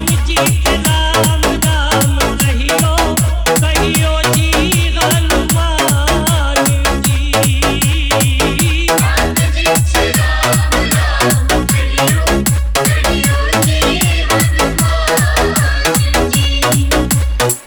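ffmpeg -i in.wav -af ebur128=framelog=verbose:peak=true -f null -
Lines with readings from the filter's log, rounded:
Integrated loudness:
  I:         -12.2 LUFS
  Threshold: -22.2 LUFS
Loudness range:
  LRA:         0.3 LU
  Threshold: -32.2 LUFS
  LRA low:   -12.4 LUFS
  LRA high:  -12.1 LUFS
True peak:
  Peak:       -3.2 dBFS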